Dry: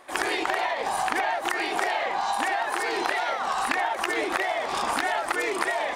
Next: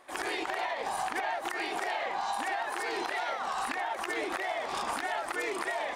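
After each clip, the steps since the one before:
brickwall limiter −16 dBFS, peak gain reduction 4 dB
level −6 dB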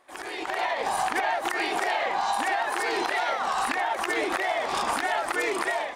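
automatic gain control gain up to 10.5 dB
level −4 dB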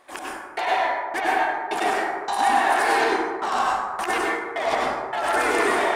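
brickwall limiter −23 dBFS, peak gain reduction 7.5 dB
gate pattern "x..x..x..x..xxx" 79 BPM −60 dB
dense smooth reverb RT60 1.6 s, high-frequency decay 0.35×, pre-delay 85 ms, DRR −5 dB
level +5.5 dB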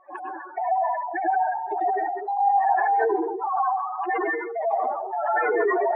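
expanding power law on the bin magnitudes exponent 3.8

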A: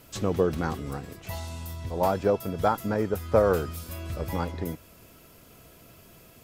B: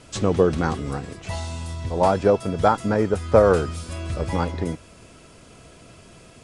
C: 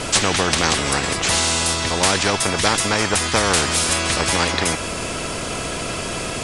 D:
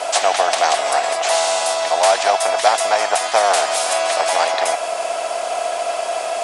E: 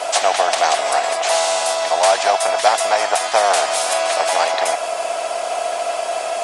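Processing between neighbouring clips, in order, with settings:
Butterworth low-pass 10,000 Hz 72 dB per octave; level +6 dB
every bin compressed towards the loudest bin 4 to 1
high-pass with resonance 690 Hz, resonance Q 8.5; level −3 dB
Opus 48 kbit/s 48,000 Hz

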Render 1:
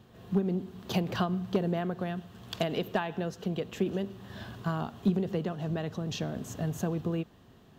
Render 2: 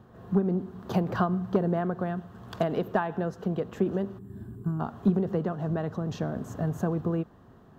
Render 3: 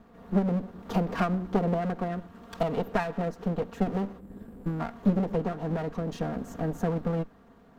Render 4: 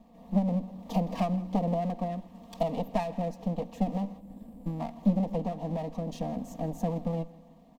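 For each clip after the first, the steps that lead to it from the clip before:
gain on a spectral selection 0:04.19–0:04.80, 450–7,200 Hz −19 dB; high shelf with overshoot 1,900 Hz −9.5 dB, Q 1.5; level +3 dB
lower of the sound and its delayed copy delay 4.3 ms
phaser with its sweep stopped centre 390 Hz, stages 6; repeating echo 163 ms, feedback 49%, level −20.5 dB

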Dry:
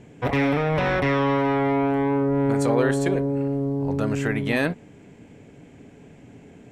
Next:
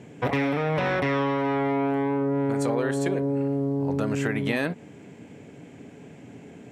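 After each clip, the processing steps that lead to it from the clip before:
high-pass filter 110 Hz
downward compressor, threshold −24 dBFS, peak gain reduction 8.5 dB
level +2.5 dB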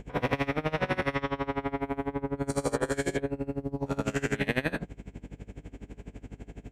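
every bin's largest magnitude spread in time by 240 ms
mains hum 50 Hz, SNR 13 dB
tremolo with a sine in dB 12 Hz, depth 23 dB
level −3.5 dB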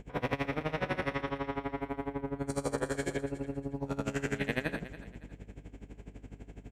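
repeating echo 281 ms, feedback 33%, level −15 dB
level −4.5 dB

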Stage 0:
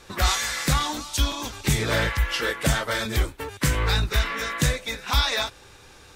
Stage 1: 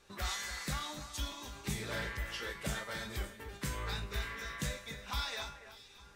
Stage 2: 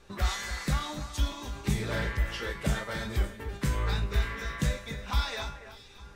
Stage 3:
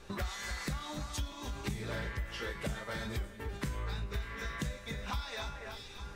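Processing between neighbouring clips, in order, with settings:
tuned comb filter 200 Hz, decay 0.5 s, harmonics all, mix 80%; delay that swaps between a low-pass and a high-pass 289 ms, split 2,400 Hz, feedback 55%, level −11 dB; level −4 dB
spectral tilt −1.5 dB per octave; level +6 dB
downward compressor 4 to 1, threshold −40 dBFS, peak gain reduction 16 dB; level +3.5 dB

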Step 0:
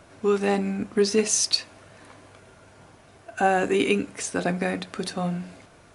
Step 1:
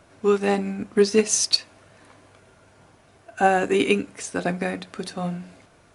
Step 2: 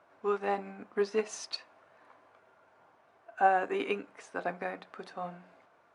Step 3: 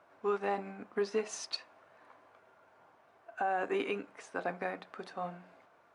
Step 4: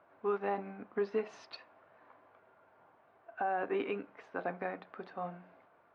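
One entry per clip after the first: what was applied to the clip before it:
expander for the loud parts 1.5 to 1, over −30 dBFS; level +4 dB
resonant band-pass 970 Hz, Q 1.1; level −4 dB
brickwall limiter −23 dBFS, peak gain reduction 11 dB
high-frequency loss of the air 320 metres

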